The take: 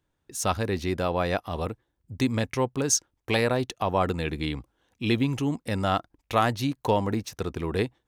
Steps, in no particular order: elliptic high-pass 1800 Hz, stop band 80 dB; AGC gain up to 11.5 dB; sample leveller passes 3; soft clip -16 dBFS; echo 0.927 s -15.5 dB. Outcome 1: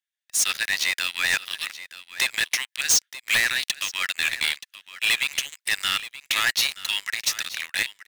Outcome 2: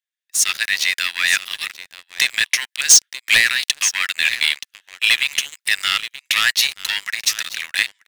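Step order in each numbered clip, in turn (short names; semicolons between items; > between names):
elliptic high-pass > sample leveller > AGC > soft clip > echo; soft clip > echo > AGC > elliptic high-pass > sample leveller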